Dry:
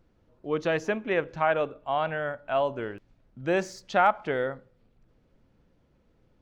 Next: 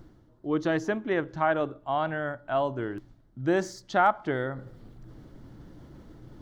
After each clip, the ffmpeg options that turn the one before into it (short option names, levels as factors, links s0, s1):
-af "equalizer=f=125:t=o:w=0.33:g=7,equalizer=f=315:t=o:w=0.33:g=8,equalizer=f=500:t=o:w=0.33:g=-6,equalizer=f=2500:t=o:w=0.33:g=-11,areverse,acompressor=mode=upward:threshold=0.0224:ratio=2.5,areverse"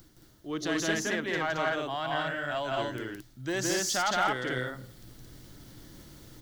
-filter_complex "[0:a]acrossover=split=320|1100[s0][s1][s2];[s2]crystalizer=i=9.5:c=0[s3];[s0][s1][s3]amix=inputs=3:normalize=0,asoftclip=type=tanh:threshold=0.168,aecho=1:1:166.2|221.6:0.891|0.891,volume=0.447"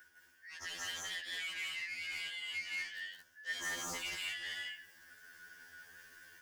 -af "afftfilt=real='real(if(lt(b,272),68*(eq(floor(b/68),0)*3+eq(floor(b/68),1)*0+eq(floor(b/68),2)*1+eq(floor(b/68),3)*2)+mod(b,68),b),0)':imag='imag(if(lt(b,272),68*(eq(floor(b/68),0)*3+eq(floor(b/68),1)*0+eq(floor(b/68),2)*1+eq(floor(b/68),3)*2)+mod(b,68),b),0)':win_size=2048:overlap=0.75,asoftclip=type=tanh:threshold=0.0316,afftfilt=real='re*2*eq(mod(b,4),0)':imag='im*2*eq(mod(b,4),0)':win_size=2048:overlap=0.75,volume=0.596"